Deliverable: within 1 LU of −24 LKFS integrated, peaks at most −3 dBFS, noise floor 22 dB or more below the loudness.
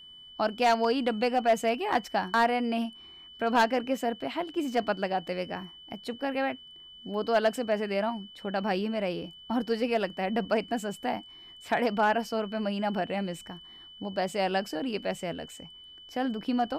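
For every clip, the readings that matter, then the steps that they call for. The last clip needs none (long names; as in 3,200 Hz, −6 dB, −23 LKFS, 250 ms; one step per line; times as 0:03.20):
share of clipped samples 0.3%; peaks flattened at −17.0 dBFS; interfering tone 3,000 Hz; level of the tone −47 dBFS; integrated loudness −29.5 LKFS; sample peak −17.0 dBFS; target loudness −24.0 LKFS
→ clipped peaks rebuilt −17 dBFS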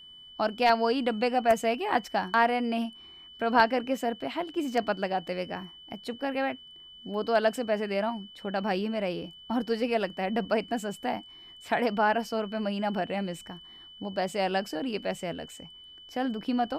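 share of clipped samples 0.0%; interfering tone 3,000 Hz; level of the tone −47 dBFS
→ notch filter 3,000 Hz, Q 30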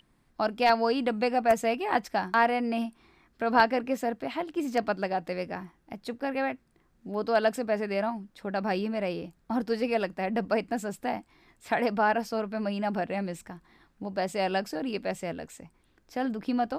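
interfering tone none found; integrated loudness −29.0 LKFS; sample peak −8.5 dBFS; target loudness −24.0 LKFS
→ level +5 dB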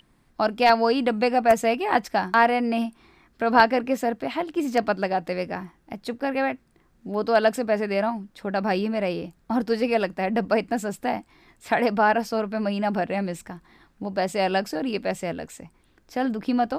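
integrated loudness −24.0 LKFS; sample peak −3.5 dBFS; background noise floor −62 dBFS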